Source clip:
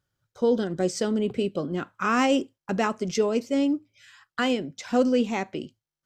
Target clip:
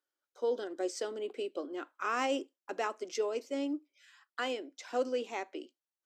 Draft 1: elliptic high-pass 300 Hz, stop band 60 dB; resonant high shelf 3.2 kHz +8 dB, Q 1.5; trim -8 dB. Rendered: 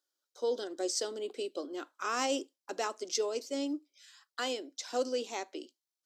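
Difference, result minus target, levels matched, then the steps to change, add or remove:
8 kHz band +8.5 dB
remove: resonant high shelf 3.2 kHz +8 dB, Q 1.5

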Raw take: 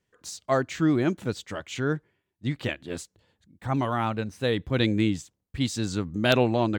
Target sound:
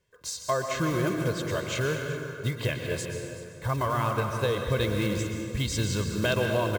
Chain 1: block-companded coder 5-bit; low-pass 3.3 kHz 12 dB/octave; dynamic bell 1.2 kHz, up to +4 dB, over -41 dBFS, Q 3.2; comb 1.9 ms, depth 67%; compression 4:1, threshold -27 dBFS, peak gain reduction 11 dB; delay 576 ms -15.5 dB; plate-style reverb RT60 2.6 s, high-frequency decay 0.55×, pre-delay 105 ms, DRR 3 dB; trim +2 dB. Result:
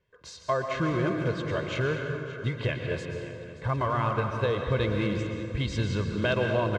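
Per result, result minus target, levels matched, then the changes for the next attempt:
echo 195 ms late; 4 kHz band -3.5 dB
change: delay 381 ms -15.5 dB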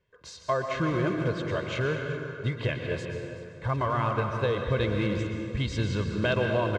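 4 kHz band -3.5 dB
remove: low-pass 3.3 kHz 12 dB/octave

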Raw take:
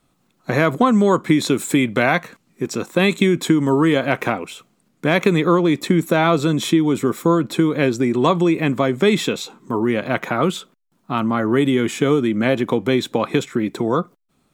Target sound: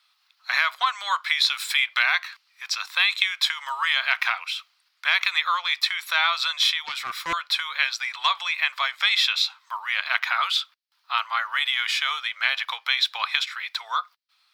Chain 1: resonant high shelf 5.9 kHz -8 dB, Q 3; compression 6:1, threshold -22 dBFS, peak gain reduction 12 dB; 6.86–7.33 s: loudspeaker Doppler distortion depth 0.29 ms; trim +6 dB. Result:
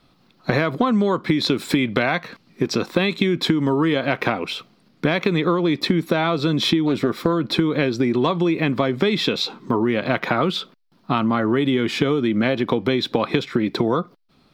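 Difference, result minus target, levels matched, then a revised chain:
2 kHz band -6.5 dB
Bessel high-pass 1.7 kHz, order 8; resonant high shelf 5.9 kHz -8 dB, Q 3; compression 6:1, threshold -22 dBFS, peak gain reduction 6 dB; 6.86–7.33 s: loudspeaker Doppler distortion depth 0.29 ms; trim +6 dB

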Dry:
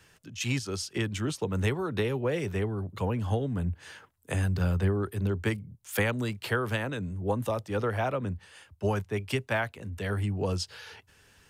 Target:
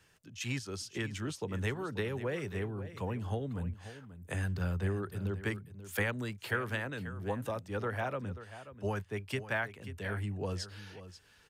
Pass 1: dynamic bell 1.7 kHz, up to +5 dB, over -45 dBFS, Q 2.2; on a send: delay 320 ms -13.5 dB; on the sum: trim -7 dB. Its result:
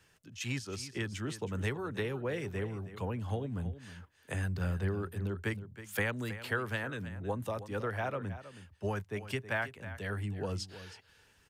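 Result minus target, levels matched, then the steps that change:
echo 216 ms early
change: delay 536 ms -13.5 dB

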